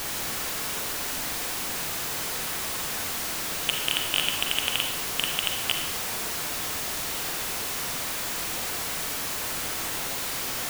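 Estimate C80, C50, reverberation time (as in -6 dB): 7.0 dB, 4.0 dB, 0.85 s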